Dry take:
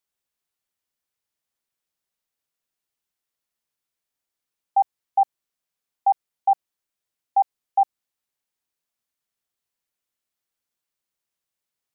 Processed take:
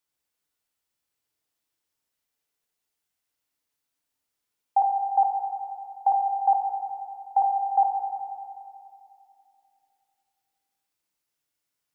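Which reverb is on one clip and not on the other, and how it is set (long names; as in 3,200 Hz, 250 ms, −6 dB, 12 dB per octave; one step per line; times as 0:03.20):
feedback delay network reverb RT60 2.6 s, high-frequency decay 0.95×, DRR 1 dB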